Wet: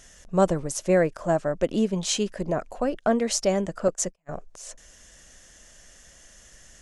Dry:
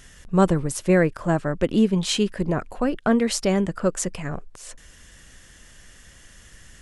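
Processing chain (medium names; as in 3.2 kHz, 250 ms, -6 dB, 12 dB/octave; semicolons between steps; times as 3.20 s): fifteen-band graphic EQ 100 Hz -7 dB, 630 Hz +9 dB, 6.3 kHz +9 dB; 3.88–4.29 s: gate -24 dBFS, range -41 dB; trim -5.5 dB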